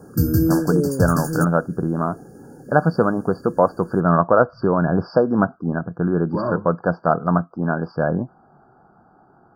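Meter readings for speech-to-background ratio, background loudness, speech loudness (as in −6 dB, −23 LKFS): 1.0 dB, −21.5 LKFS, −20.5 LKFS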